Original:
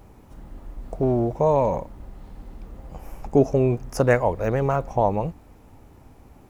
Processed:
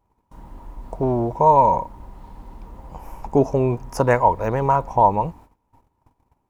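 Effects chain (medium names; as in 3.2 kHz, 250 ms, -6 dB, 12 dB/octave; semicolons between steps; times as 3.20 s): peaking EQ 950 Hz +15 dB 0.28 oct; gate -43 dBFS, range -23 dB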